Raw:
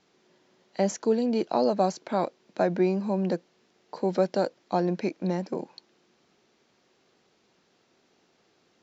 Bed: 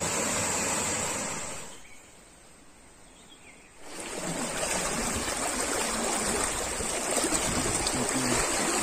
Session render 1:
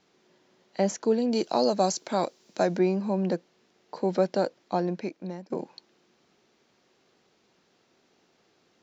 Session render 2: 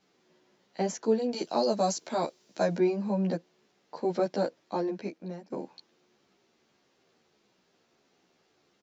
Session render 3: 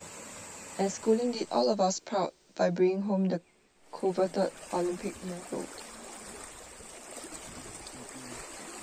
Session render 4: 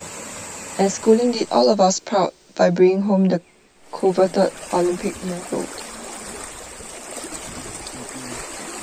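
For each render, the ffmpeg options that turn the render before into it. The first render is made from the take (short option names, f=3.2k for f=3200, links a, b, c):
-filter_complex "[0:a]asettb=1/sr,asplit=3[a][b][c];[a]atrim=end=1.324[d];[b]atrim=start=1.32:end=2.79,asetpts=PTS-STARTPTS,afade=t=in:d=0.004:c=qsin,afade=t=out:st=1.466:d=0.004:c=qsin,bass=f=250:g=-1,treble=f=4k:g=13[e];[c]atrim=start=2.786[f];[d][e]acrossfade=d=0.004:c1=hsin:c2=qsin[g];[g][f]acrossfade=d=0.004:c1=qsin:c2=hsin,asplit=2[h][i];[h]atrim=end=5.5,asetpts=PTS-STARTPTS,afade=t=out:st=4.61:d=0.89:silence=0.199526[j];[i]atrim=start=5.5,asetpts=PTS-STARTPTS,afade=t=in:d=0.004:c=hsin:silence=0.199526[k];[j][k]concat=n=2:v=0:a=1"
-filter_complex "[0:a]asplit=2[a][b];[b]adelay=12,afreqshift=-1.6[c];[a][c]amix=inputs=2:normalize=1"
-filter_complex "[1:a]volume=-16.5dB[a];[0:a][a]amix=inputs=2:normalize=0"
-af "volume=11.5dB,alimiter=limit=-3dB:level=0:latency=1"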